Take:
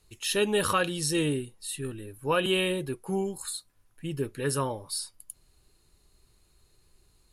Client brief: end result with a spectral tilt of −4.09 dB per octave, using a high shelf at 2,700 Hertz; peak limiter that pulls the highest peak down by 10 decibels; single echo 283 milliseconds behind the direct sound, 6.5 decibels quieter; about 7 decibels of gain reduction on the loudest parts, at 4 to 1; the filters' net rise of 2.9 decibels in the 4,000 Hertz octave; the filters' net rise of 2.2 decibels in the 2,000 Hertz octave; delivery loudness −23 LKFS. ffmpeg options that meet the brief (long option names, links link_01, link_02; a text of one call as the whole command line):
ffmpeg -i in.wav -af "equalizer=frequency=2000:width_type=o:gain=3.5,highshelf=frequency=2700:gain=-6.5,equalizer=frequency=4000:width_type=o:gain=8,acompressor=threshold=-29dB:ratio=4,alimiter=level_in=6dB:limit=-24dB:level=0:latency=1,volume=-6dB,aecho=1:1:283:0.473,volume=15.5dB" out.wav